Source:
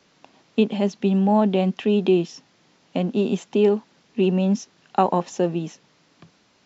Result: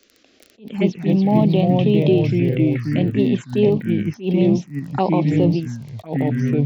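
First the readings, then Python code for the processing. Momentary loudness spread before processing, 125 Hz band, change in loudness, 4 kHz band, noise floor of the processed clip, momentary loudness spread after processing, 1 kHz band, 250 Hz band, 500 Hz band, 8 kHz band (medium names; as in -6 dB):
10 LU, +9.5 dB, +3.5 dB, +1.0 dB, -56 dBFS, 8 LU, -1.5 dB, +4.5 dB, +1.5 dB, no reading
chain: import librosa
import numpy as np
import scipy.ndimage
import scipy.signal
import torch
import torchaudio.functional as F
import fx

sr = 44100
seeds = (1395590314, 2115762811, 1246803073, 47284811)

p1 = fx.echo_pitch(x, sr, ms=112, semitones=-3, count=3, db_per_echo=-3.0)
p2 = fx.level_steps(p1, sr, step_db=13)
p3 = p1 + (p2 * 10.0 ** (-1.0 / 20.0))
p4 = fx.dmg_crackle(p3, sr, seeds[0], per_s=24.0, level_db=-26.0)
p5 = fx.env_phaser(p4, sr, low_hz=150.0, high_hz=1500.0, full_db=-12.0)
y = fx.attack_slew(p5, sr, db_per_s=210.0)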